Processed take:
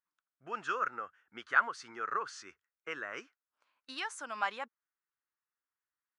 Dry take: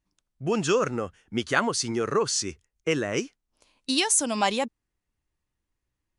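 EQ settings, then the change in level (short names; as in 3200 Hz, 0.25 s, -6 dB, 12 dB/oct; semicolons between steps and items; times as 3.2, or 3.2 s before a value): band-pass 1400 Hz, Q 3.3; 0.0 dB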